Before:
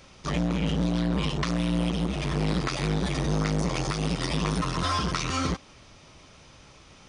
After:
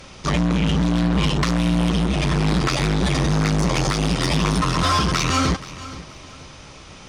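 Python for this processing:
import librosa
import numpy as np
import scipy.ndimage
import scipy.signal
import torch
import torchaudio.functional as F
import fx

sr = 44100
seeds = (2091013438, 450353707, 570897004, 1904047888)

y = fx.fold_sine(x, sr, drive_db=6, ceiling_db=-13.5)
y = fx.echo_feedback(y, sr, ms=478, feedback_pct=32, wet_db=-16.5)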